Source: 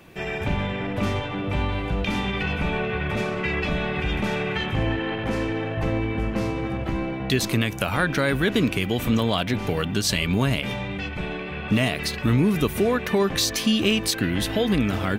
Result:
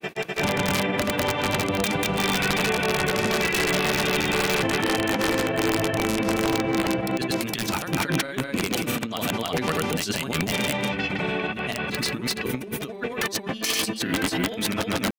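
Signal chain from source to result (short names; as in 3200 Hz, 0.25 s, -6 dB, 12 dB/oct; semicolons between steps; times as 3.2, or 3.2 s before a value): HPF 170 Hz 12 dB/oct; notches 60/120/180/240/300/360/420/480 Hz; negative-ratio compressor -27 dBFS, ratio -0.5; wrapped overs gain 18 dB; grains 0.1 s, grains 20/s, spray 0.254 s, pitch spread up and down by 0 st; gain +4.5 dB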